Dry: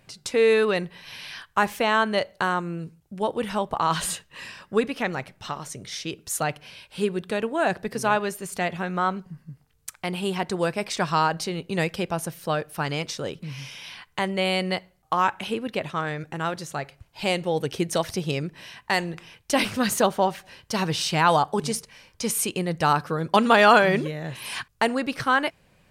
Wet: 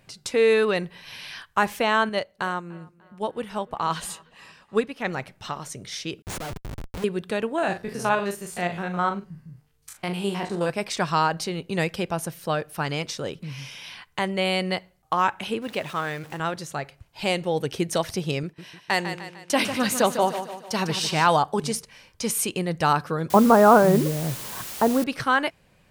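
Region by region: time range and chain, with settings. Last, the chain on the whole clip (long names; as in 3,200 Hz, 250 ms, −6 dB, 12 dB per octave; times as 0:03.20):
0:02.09–0:05.05: delay with a low-pass on its return 296 ms, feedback 59%, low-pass 3,100 Hz, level −20 dB + expander for the loud parts, over −35 dBFS
0:06.22–0:07.04: low-pass filter 1,100 Hz 6 dB per octave + upward compression, threshold −49 dBFS + comparator with hysteresis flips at −44 dBFS
0:07.58–0:10.70: spectrum averaged block by block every 50 ms + double-tracking delay 40 ms −8.5 dB
0:15.62–0:16.40: converter with a step at zero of −38.5 dBFS + high-pass filter 48 Hz + low-shelf EQ 320 Hz −5.5 dB
0:18.43–0:21.27: high-pass filter 110 Hz 6 dB per octave + downward expander −40 dBFS + repeating echo 150 ms, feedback 47%, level −9.5 dB
0:23.30–0:25.04: low-pass filter 1,300 Hz 24 dB per octave + low-shelf EQ 450 Hz +7 dB + bit-depth reduction 6 bits, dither triangular
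whole clip: no processing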